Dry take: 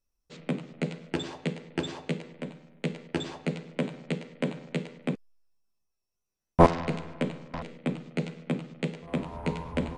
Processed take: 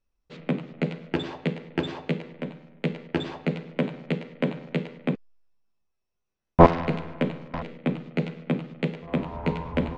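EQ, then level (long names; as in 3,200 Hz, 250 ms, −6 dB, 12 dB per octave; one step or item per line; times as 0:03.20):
low-pass filter 3,500 Hz 12 dB per octave
+4.0 dB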